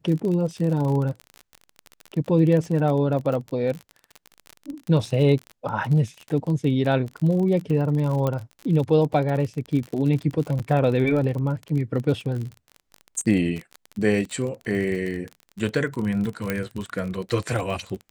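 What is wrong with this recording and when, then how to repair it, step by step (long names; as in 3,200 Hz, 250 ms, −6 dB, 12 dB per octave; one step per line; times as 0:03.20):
surface crackle 34 per second −28 dBFS
0:08.27: click −13 dBFS
0:10.59–0:10.60: drop-out 7.3 ms
0:16.50: click −11 dBFS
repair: click removal
repair the gap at 0:10.59, 7.3 ms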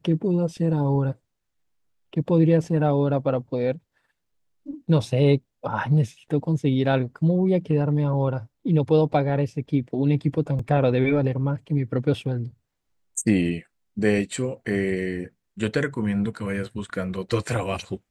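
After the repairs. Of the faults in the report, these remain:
none of them is left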